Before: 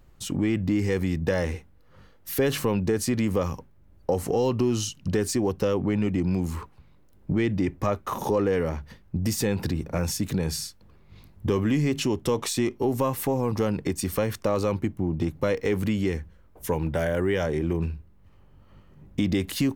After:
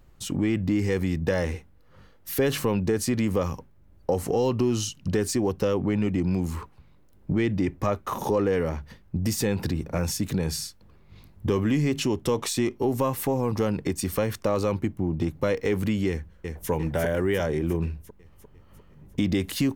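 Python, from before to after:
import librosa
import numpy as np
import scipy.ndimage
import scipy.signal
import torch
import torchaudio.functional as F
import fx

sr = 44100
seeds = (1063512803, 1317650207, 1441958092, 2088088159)

y = fx.echo_throw(x, sr, start_s=16.09, length_s=0.61, ms=350, feedback_pct=60, wet_db=-4.0)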